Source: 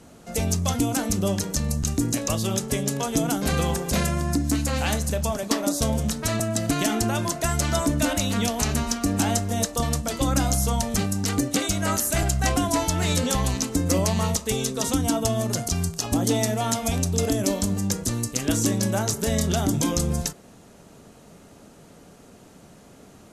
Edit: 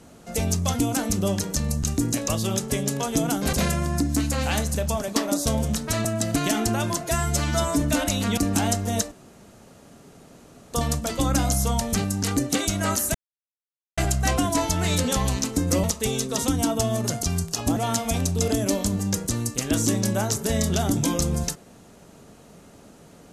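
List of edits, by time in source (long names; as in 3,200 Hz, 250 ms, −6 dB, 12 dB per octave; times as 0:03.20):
0:03.53–0:03.88: remove
0:07.39–0:07.90: time-stretch 1.5×
0:08.47–0:09.01: remove
0:09.75: splice in room tone 1.62 s
0:12.16: splice in silence 0.83 s
0:14.02–0:14.29: remove
0:16.22–0:16.54: remove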